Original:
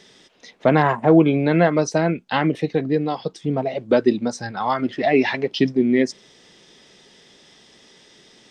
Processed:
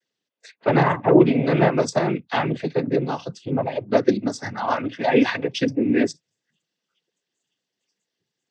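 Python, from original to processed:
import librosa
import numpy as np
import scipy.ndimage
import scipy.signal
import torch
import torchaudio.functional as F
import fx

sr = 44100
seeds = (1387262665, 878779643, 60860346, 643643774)

y = fx.noise_reduce_blind(x, sr, reduce_db=30)
y = fx.noise_vocoder(y, sr, seeds[0], bands=16)
y = y * librosa.db_to_amplitude(-1.0)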